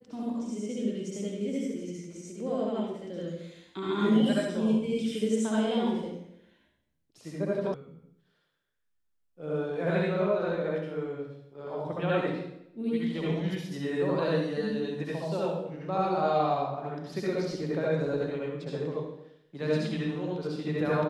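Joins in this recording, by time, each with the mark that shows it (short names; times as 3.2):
7.74 sound cut off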